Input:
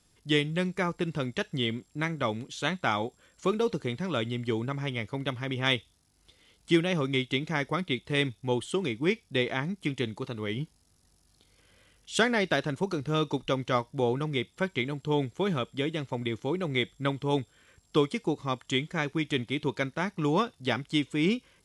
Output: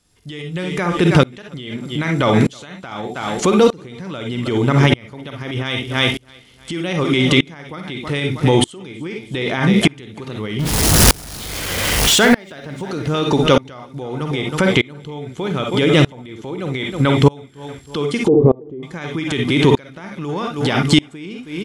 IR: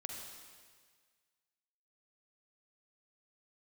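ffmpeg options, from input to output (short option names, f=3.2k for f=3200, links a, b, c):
-filter_complex "[0:a]asettb=1/sr,asplit=3[a][b][c];[a]atrim=end=10.594[d];[b]atrim=start=10.59:end=12.33,asetpts=PTS-STARTPTS,afade=t=in:d=0.004:c=qsin,afade=t=out:st=1.736:d=0.004:c=qsin,aeval=exprs='val(0)+0.5*0.0251*sgn(val(0))':c=same[e];[c]atrim=start=12.326[f];[d][e]acrossfade=d=0.004:c1=hsin:c2=qsin[g];[g][f]acrossfade=d=0.004:c1=qsin:c2=hsin,aecho=1:1:318|636|954:0.15|0.0539|0.0194[h];[1:a]atrim=start_sample=2205,atrim=end_sample=3087[i];[h][i]afir=irnorm=-1:irlink=0,acompressor=threshold=-38dB:ratio=6,asettb=1/sr,asplit=3[j][k][l];[j]atrim=end=18.284[m];[k]atrim=start=18.28:end=18.83,asetpts=PTS-STARTPTS,afade=t=in:d=0.004:c=qsin,afade=t=out:st=0.546:d=0.004:c=qsin,lowpass=f=440:t=q:w=4.9[n];[l]atrim=start=18.826[o];[m][n]acrossfade=d=0.004:c1=hsin:c2=qsin[p];[p][o]acrossfade=d=0.004:c1=qsin:c2=hsin,alimiter=level_in=35.5dB:limit=-1dB:release=50:level=0:latency=1,aeval=exprs='val(0)*pow(10,-29*if(lt(mod(-0.81*n/s,1),2*abs(-0.81)/1000),1-mod(-0.81*n/s,1)/(2*abs(-0.81)/1000),(mod(-0.81*n/s,1)-2*abs(-0.81)/1000)/(1-2*abs(-0.81)/1000))/20)':c=same"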